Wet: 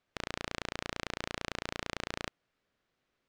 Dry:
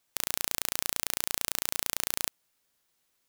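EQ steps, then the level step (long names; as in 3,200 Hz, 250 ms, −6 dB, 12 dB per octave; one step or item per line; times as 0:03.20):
low-pass filter 1,600 Hz 6 dB per octave
high-frequency loss of the air 100 metres
parametric band 900 Hz −6 dB 0.46 octaves
+4.5 dB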